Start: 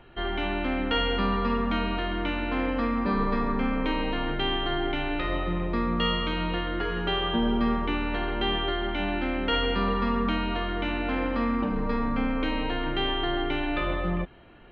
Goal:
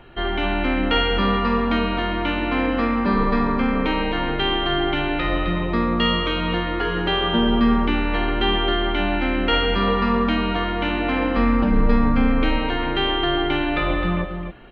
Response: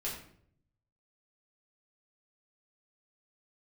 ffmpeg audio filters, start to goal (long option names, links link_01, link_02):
-filter_complex "[0:a]asettb=1/sr,asplit=3[link_01][link_02][link_03];[link_01]atrim=end=11.374[link_04];[link_02]atrim=start=11.37:end=12.58,asetpts=PTS-STARTPTS,afade=type=in:duration=0.004:curve=qsin,afade=type=out:start_time=1.206:duration=0.004:curve=qsin,lowshelf=frequency=120:gain=9[link_05];[link_03]atrim=start=12.576[link_06];[link_04][link_05]acrossfade=duration=0.004:curve1=hsin:curve2=qsin[link_07];[link_07][link_06]acrossfade=duration=0.004:curve1=qsin:curve2=hsin,asplit=2[link_08][link_09];[link_09]aecho=0:1:261:0.398[link_10];[link_08][link_10]amix=inputs=2:normalize=0,volume=6dB"